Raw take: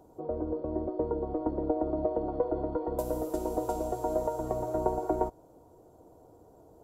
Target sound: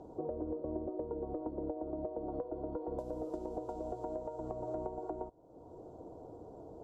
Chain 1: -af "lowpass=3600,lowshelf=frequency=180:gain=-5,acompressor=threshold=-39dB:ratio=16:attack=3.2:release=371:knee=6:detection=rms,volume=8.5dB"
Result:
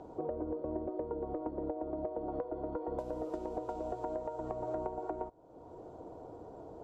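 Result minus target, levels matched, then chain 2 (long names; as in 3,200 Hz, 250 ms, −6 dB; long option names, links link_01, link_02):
2,000 Hz band +8.5 dB
-af "lowpass=3600,lowshelf=frequency=180:gain=-5,acompressor=threshold=-39dB:ratio=16:attack=3.2:release=371:knee=6:detection=rms,equalizer=frequency=2000:width=0.79:gain=-12.5,volume=8.5dB"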